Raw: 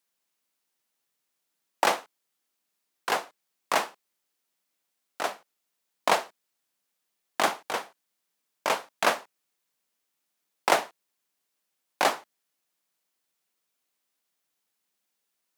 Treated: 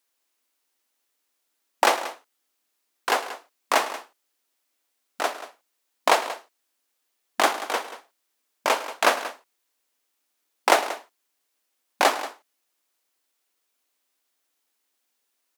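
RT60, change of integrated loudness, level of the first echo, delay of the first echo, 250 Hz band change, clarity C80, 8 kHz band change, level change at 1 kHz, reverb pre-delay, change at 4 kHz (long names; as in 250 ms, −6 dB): no reverb audible, +4.0 dB, −16.0 dB, 106 ms, +3.5 dB, no reverb audible, +4.5 dB, +4.5 dB, no reverb audible, +4.5 dB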